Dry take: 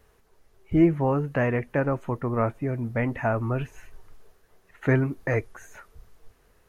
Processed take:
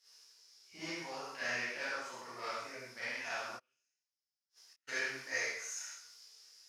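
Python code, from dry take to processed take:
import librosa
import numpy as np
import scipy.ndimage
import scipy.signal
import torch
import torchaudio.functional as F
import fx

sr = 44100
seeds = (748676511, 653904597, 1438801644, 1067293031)

p1 = np.clip(10.0 ** (18.5 / 20.0) * x, -1.0, 1.0) / 10.0 ** (18.5 / 20.0)
p2 = x + (p1 * librosa.db_to_amplitude(-8.0))
p3 = fx.bandpass_q(p2, sr, hz=5200.0, q=6.8)
p4 = fx.echo_multitap(p3, sr, ms=(64, 74, 127, 228), db=(-15.5, -3.5, -11.5, -17.5))
p5 = fx.rev_schroeder(p4, sr, rt60_s=0.49, comb_ms=33, drr_db=-9.0)
p6 = fx.gate_flip(p5, sr, shuts_db=-58.0, range_db=-39, at=(3.56, 4.87), fade=0.02)
p7 = fx.tilt_eq(p6, sr, slope=1.5)
p8 = fx.detune_double(p7, sr, cents=39)
y = p8 * librosa.db_to_amplitude(9.0)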